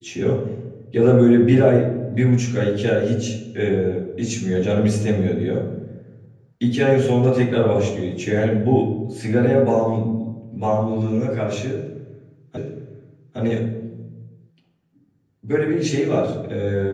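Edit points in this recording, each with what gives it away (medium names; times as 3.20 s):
12.57 s: repeat of the last 0.81 s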